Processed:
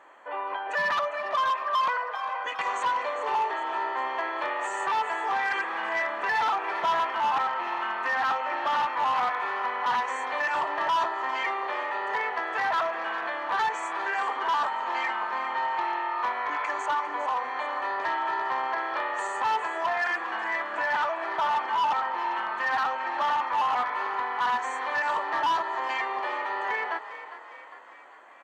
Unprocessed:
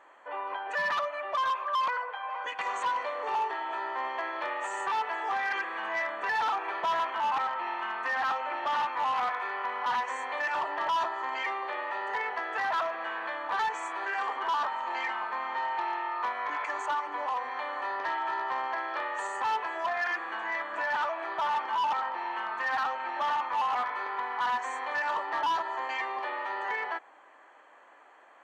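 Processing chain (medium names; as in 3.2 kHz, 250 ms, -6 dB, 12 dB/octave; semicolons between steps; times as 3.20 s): high-pass 68 Hz; bass shelf 180 Hz +5 dB; frequency-shifting echo 403 ms, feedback 54%, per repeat +37 Hz, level -13 dB; trim +3 dB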